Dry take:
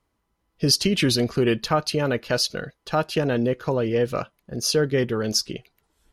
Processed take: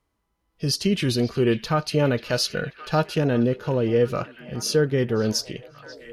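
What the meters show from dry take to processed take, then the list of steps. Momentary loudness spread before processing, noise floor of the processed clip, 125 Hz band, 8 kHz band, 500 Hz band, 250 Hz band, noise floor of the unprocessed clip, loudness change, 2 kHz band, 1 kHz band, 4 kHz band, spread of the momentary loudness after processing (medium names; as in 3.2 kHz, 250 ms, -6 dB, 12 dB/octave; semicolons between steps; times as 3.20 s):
7 LU, -75 dBFS, +2.0 dB, -3.5 dB, +0.5 dB, +0.5 dB, -75 dBFS, -0.5 dB, -1.0 dB, -1.0 dB, -3.5 dB, 10 LU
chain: harmonic-percussive split harmonic +8 dB; repeats whose band climbs or falls 538 ms, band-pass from 2.9 kHz, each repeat -0.7 oct, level -11.5 dB; gain riding within 3 dB 0.5 s; trim -4.5 dB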